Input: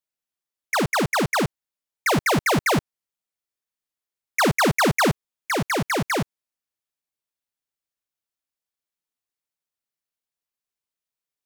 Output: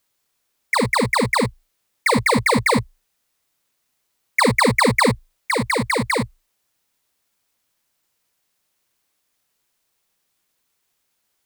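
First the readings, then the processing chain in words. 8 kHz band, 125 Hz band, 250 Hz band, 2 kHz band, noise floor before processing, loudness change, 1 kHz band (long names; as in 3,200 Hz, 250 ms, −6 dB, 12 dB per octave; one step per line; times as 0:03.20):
+1.5 dB, +1.5 dB, +3.0 dB, +4.0 dB, below −85 dBFS, +3.0 dB, +3.5 dB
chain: EQ curve with evenly spaced ripples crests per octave 0.96, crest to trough 16 dB
bit-depth reduction 12 bits, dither triangular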